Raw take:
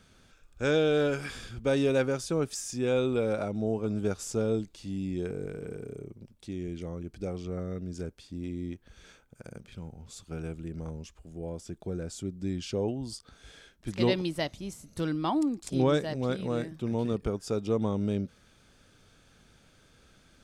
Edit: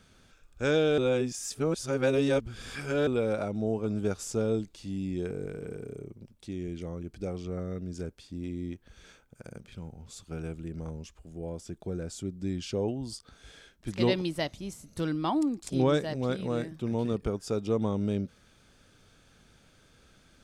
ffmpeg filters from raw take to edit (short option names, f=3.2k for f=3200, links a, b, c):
-filter_complex "[0:a]asplit=3[a][b][c];[a]atrim=end=0.982[d];[b]atrim=start=0.978:end=3.072,asetpts=PTS-STARTPTS,areverse[e];[c]atrim=start=3.068[f];[d][e]acrossfade=d=0.004:c1=hsin:c2=hsin[g];[g][f]acrossfade=d=0.004:c1=hsin:c2=hsin"